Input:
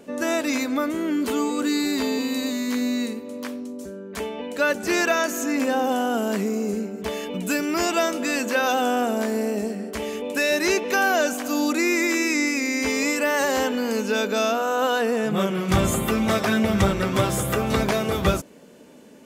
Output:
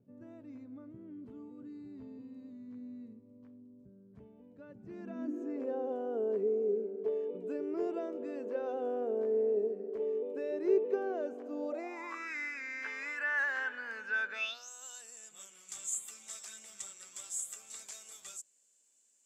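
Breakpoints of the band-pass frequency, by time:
band-pass, Q 7.6
4.81 s 120 Hz
5.52 s 420 Hz
11.54 s 420 Hz
12.33 s 1600 Hz
14.3 s 1600 Hz
14.71 s 7500 Hz

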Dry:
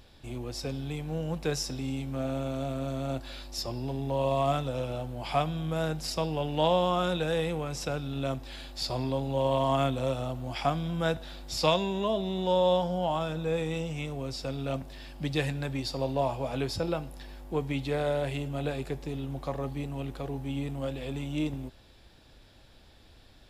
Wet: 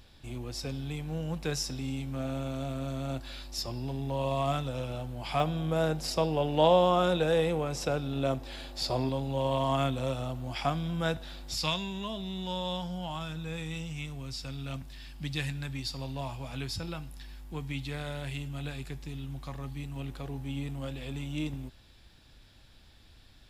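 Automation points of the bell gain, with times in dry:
bell 520 Hz 1.8 oct
-4.5 dB
from 5.4 s +3.5 dB
from 9.09 s -3.5 dB
from 11.55 s -14.5 dB
from 19.96 s -7.5 dB

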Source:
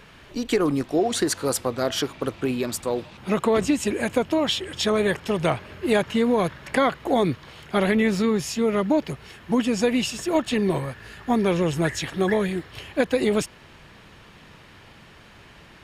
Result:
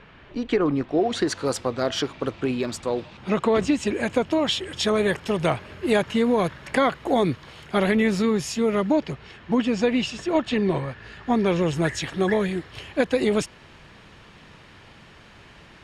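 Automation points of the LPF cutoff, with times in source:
0.91 s 2900 Hz
1.41 s 6100 Hz
3.83 s 6100 Hz
4.76 s 11000 Hz
8.76 s 11000 Hz
9.21 s 4700 Hz
11.01 s 4700 Hz
11.89 s 9000 Hz

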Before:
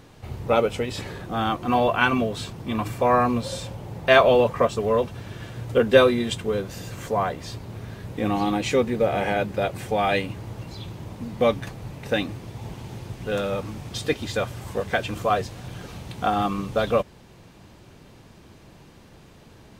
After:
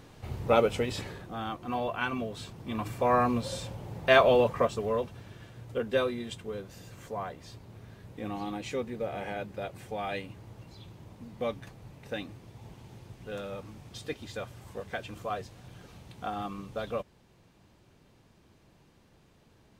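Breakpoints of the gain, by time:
0.91 s -3 dB
1.39 s -11.5 dB
2.08 s -11.5 dB
3.22 s -5 dB
4.51 s -5 dB
5.52 s -12.5 dB

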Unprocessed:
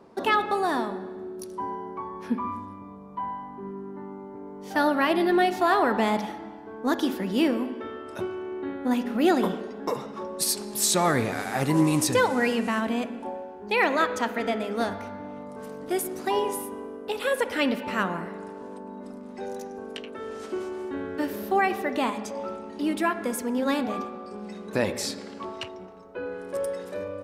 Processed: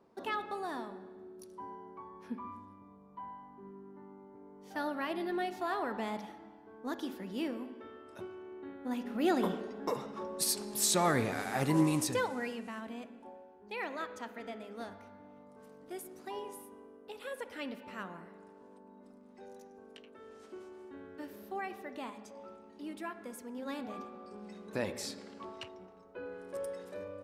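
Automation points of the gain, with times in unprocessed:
8.77 s -13.5 dB
9.51 s -6 dB
11.81 s -6 dB
12.64 s -16.5 dB
23.52 s -16.5 dB
24.25 s -10 dB

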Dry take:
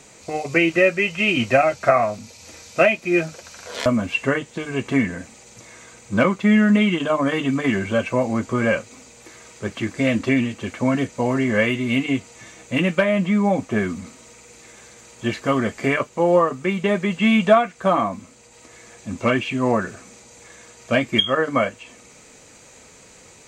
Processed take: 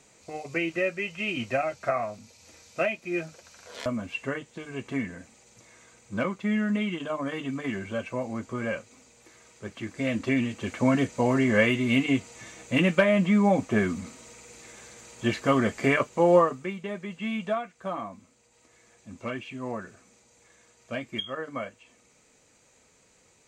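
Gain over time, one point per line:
9.77 s -11 dB
10.8 s -2.5 dB
16.39 s -2.5 dB
16.81 s -14.5 dB

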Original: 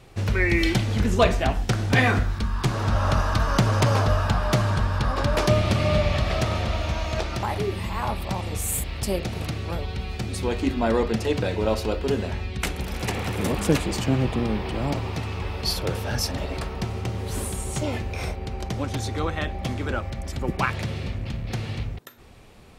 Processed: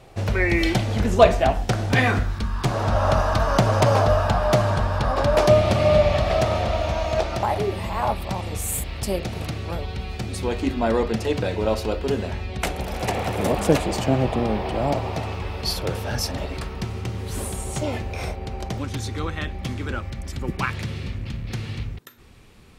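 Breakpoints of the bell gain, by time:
bell 660 Hz 0.91 oct
+7.5 dB
from 1.92 s +1 dB
from 2.65 s +9 dB
from 8.12 s +2 dB
from 12.49 s +10 dB
from 15.35 s +2 dB
from 16.48 s -4 dB
from 17.39 s +3 dB
from 18.78 s -7 dB

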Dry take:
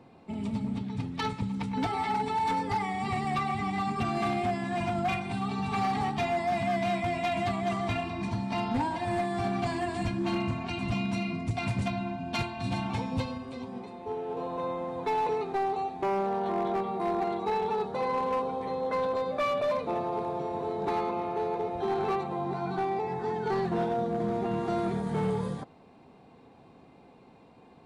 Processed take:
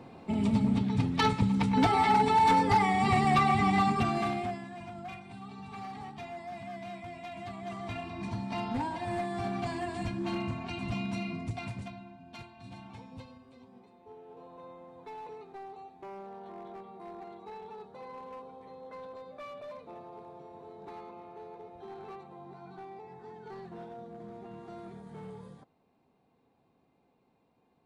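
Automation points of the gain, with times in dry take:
3.79 s +5.5 dB
4.51 s -6 dB
4.75 s -13.5 dB
7.32 s -13.5 dB
8.31 s -4 dB
11.44 s -4 dB
12.09 s -16 dB

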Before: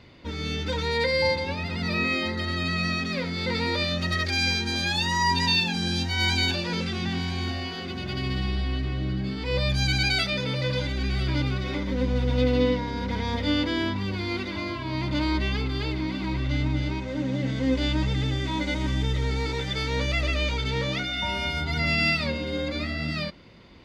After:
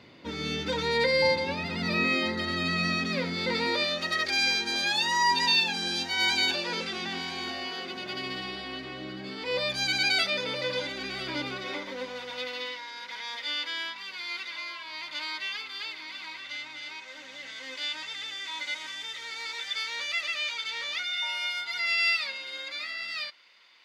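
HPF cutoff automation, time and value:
3.26 s 160 Hz
3.94 s 390 Hz
11.55 s 390 Hz
12.72 s 1500 Hz

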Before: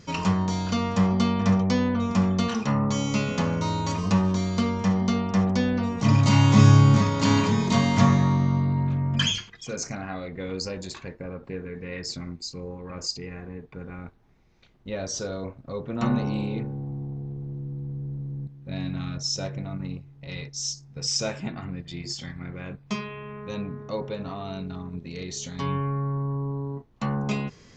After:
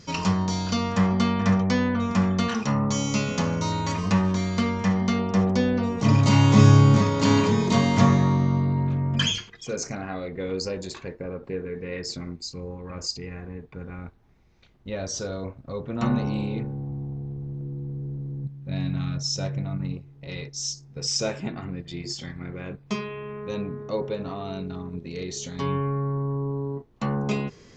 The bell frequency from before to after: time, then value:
bell +5.5 dB 0.81 oct
5100 Hz
from 0.92 s 1700 Hz
from 2.63 s 6000 Hz
from 3.72 s 1900 Hz
from 5.19 s 420 Hz
from 12.38 s 71 Hz
from 17.61 s 380 Hz
from 18.44 s 130 Hz
from 19.93 s 400 Hz

